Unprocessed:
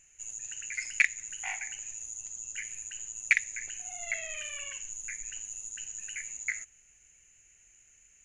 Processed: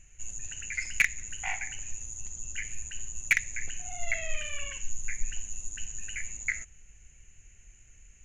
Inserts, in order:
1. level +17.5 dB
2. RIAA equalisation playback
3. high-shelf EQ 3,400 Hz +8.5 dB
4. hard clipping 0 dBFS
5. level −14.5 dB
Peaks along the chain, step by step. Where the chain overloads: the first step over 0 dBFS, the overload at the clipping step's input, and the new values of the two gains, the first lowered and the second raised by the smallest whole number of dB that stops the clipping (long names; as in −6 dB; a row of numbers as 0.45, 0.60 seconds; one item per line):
+8.5, +6.5, +8.5, 0.0, −14.5 dBFS
step 1, 8.5 dB
step 1 +8.5 dB, step 5 −5.5 dB